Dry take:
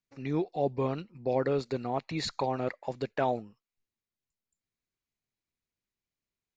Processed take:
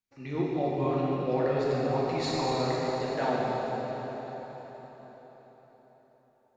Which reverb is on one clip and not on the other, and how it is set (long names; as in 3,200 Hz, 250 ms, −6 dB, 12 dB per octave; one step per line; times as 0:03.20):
dense smooth reverb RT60 4.7 s, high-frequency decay 0.85×, DRR −7 dB
level −4 dB